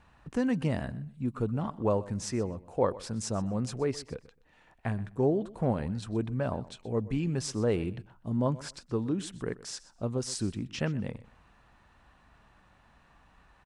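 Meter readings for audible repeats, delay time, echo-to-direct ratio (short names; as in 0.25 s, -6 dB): 2, 0.125 s, -18.5 dB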